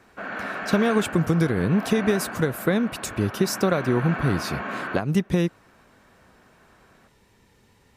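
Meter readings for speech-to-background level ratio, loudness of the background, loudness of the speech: 9.0 dB, -33.0 LUFS, -24.0 LUFS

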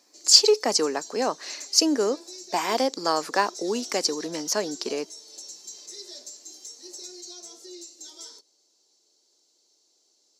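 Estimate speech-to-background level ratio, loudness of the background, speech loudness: 17.0 dB, -40.0 LUFS, -23.0 LUFS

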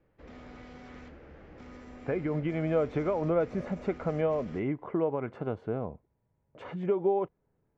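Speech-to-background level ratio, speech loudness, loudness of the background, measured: 18.0 dB, -31.5 LUFS, -49.5 LUFS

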